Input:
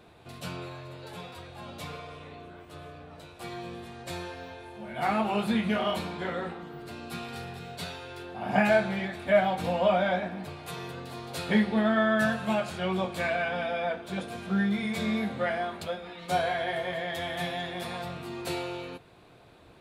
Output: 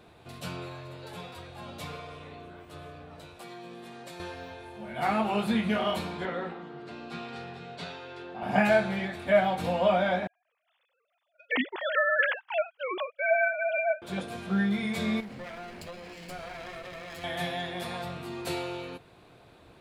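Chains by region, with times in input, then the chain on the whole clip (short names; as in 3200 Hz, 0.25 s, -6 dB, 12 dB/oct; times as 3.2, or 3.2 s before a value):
3.39–4.2 HPF 150 Hz 24 dB/oct + compressor, threshold -40 dBFS
6.25–8.43 HPF 150 Hz + air absorption 110 m
10.27–14.02 sine-wave speech + gate -38 dBFS, range -30 dB + tilt shelf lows -5 dB, about 1200 Hz
15.2–17.24 minimum comb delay 0.41 ms + compressor 4:1, threshold -39 dBFS + short-mantissa float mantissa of 6-bit
whole clip: dry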